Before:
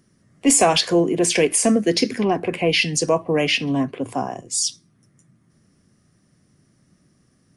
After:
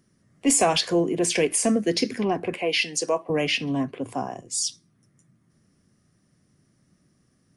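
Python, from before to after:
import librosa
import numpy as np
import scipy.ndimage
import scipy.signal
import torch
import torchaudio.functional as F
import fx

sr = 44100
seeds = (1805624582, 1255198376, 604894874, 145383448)

y = fx.highpass(x, sr, hz=340.0, slope=12, at=(2.54, 3.3))
y = y * 10.0 ** (-4.5 / 20.0)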